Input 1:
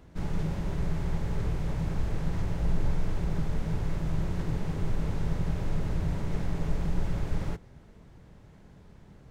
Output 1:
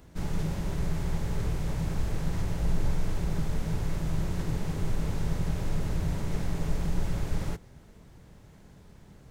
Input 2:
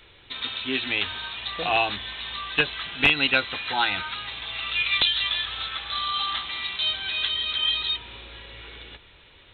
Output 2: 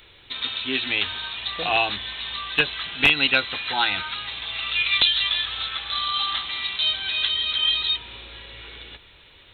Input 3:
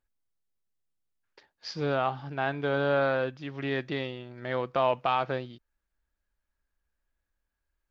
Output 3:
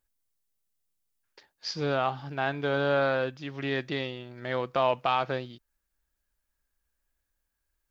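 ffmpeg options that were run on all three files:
-af "highshelf=f=5.3k:g=10.5"

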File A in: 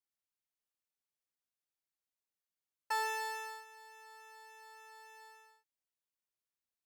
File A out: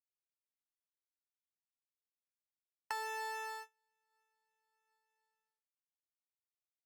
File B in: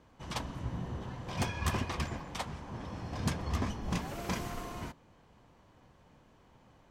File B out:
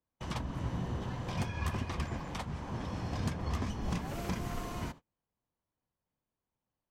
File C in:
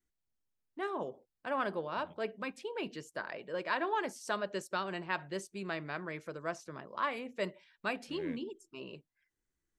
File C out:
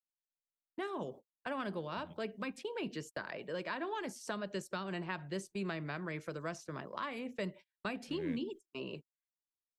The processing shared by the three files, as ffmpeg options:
-filter_complex "[0:a]agate=range=-34dB:threshold=-50dB:ratio=16:detection=peak,acrossover=split=250|2400[a][b][c];[a]acompressor=threshold=-37dB:ratio=4[d];[b]acompressor=threshold=-45dB:ratio=4[e];[c]acompressor=threshold=-54dB:ratio=4[f];[d][e][f]amix=inputs=3:normalize=0,volume=4.5dB"

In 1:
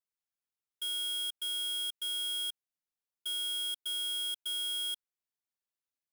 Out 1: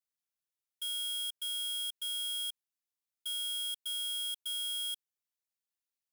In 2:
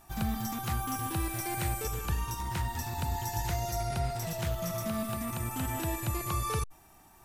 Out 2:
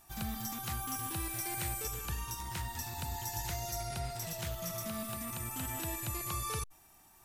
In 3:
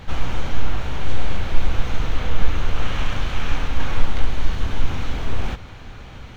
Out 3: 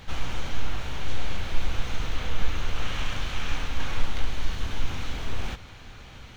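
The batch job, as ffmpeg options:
-af "highshelf=f=2.1k:g=8,volume=-7.5dB"

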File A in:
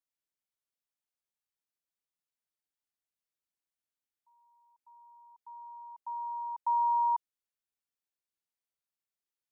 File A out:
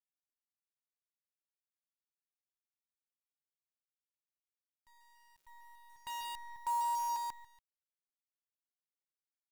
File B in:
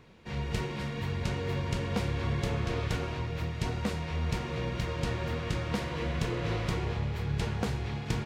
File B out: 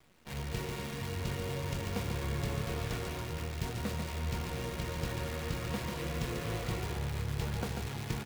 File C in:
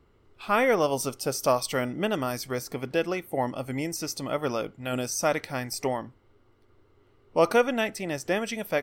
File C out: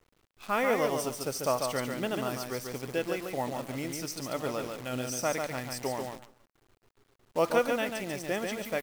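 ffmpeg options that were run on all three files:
-af "aecho=1:1:142|284|426:0.562|0.146|0.038,acrusher=bits=7:dc=4:mix=0:aa=0.000001,volume=-5.5dB"

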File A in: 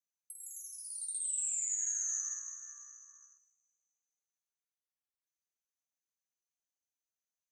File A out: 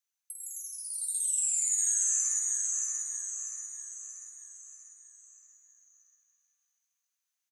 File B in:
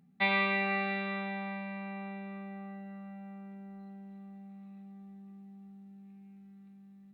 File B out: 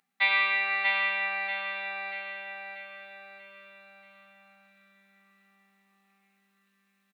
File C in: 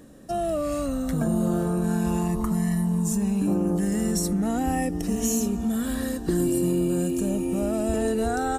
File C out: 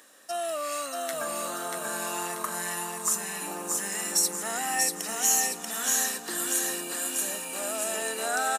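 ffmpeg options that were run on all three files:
-filter_complex "[0:a]highpass=1.2k,asplit=2[a][b];[b]aecho=0:1:636|1272|1908|2544|3180|3816:0.708|0.347|0.17|0.0833|0.0408|0.02[c];[a][c]amix=inputs=2:normalize=0,volume=6dB"

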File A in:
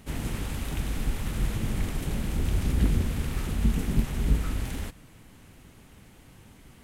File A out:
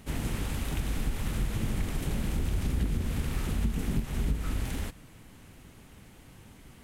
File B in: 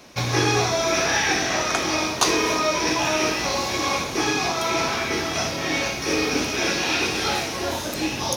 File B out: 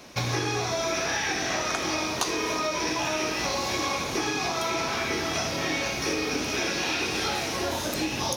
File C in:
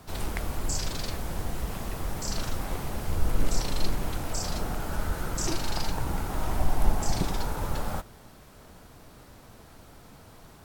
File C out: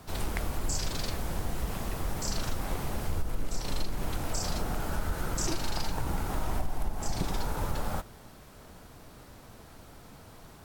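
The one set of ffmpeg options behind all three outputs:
-af "acompressor=threshold=-24dB:ratio=10"

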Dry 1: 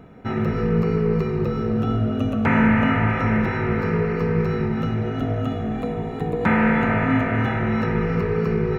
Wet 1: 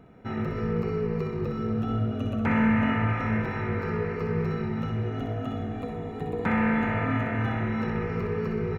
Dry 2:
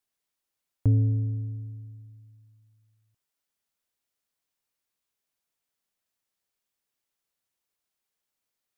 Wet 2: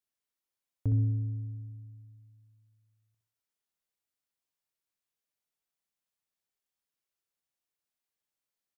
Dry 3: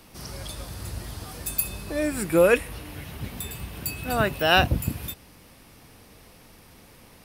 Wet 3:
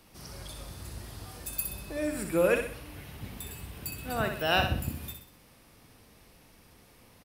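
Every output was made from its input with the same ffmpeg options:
-af "aecho=1:1:63|126|189|252|315:0.473|0.203|0.0875|0.0376|0.0162,volume=-7.5dB"

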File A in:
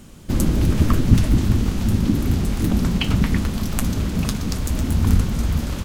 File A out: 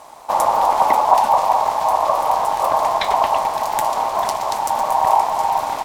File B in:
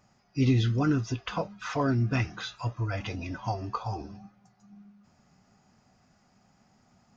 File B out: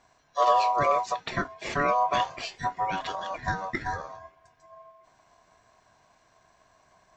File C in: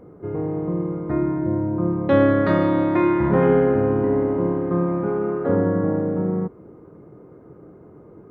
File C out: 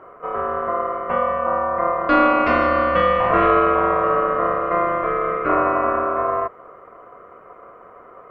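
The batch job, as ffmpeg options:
-af "acontrast=39,aeval=exprs='val(0)*sin(2*PI*860*n/s)':c=same,volume=-1dB"

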